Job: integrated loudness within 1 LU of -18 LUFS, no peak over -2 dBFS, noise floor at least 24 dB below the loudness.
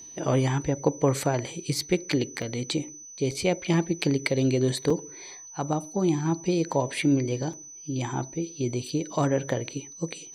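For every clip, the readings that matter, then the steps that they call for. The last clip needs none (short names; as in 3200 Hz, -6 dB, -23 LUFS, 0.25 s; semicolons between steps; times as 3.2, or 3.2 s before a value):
dropouts 4; longest dropout 4.0 ms; steady tone 6000 Hz; tone level -42 dBFS; loudness -27.5 LUFS; peak -7.5 dBFS; loudness target -18.0 LUFS
-> interpolate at 2.42/3.31/4.9/7.53, 4 ms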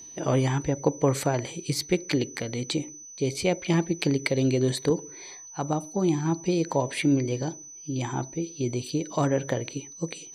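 dropouts 0; steady tone 6000 Hz; tone level -42 dBFS
-> notch 6000 Hz, Q 30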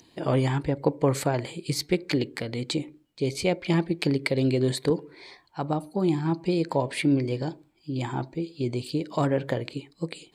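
steady tone none; loudness -27.5 LUFS; peak -7.5 dBFS; loudness target -18.0 LUFS
-> gain +9.5 dB; limiter -2 dBFS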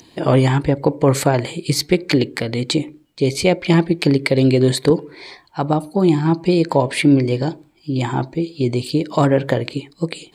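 loudness -18.0 LUFS; peak -2.0 dBFS; noise floor -52 dBFS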